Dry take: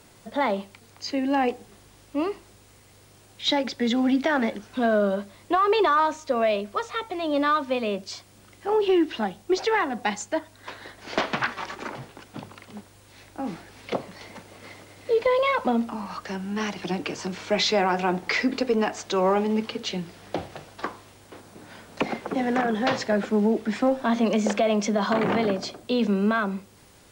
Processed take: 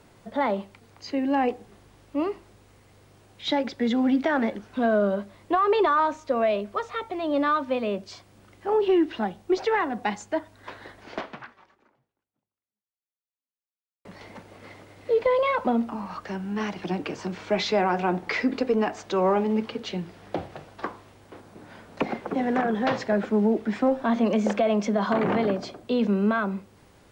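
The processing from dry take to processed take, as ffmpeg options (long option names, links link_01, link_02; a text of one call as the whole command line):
ffmpeg -i in.wav -filter_complex "[0:a]asplit=2[link_01][link_02];[link_01]atrim=end=14.05,asetpts=PTS-STARTPTS,afade=type=out:start_time=10.97:duration=3.08:curve=exp[link_03];[link_02]atrim=start=14.05,asetpts=PTS-STARTPTS,afade=type=in:duration=0.004:curve=hsin[link_04];[link_03][link_04]concat=n=2:v=0:a=1,highshelf=frequency=3300:gain=-10.5" out.wav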